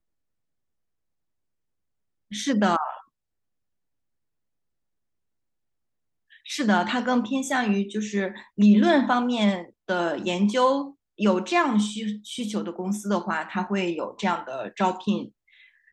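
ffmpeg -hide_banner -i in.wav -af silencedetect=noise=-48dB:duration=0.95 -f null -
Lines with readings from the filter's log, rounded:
silence_start: 0.00
silence_end: 2.31 | silence_duration: 2.31
silence_start: 3.02
silence_end: 6.32 | silence_duration: 3.30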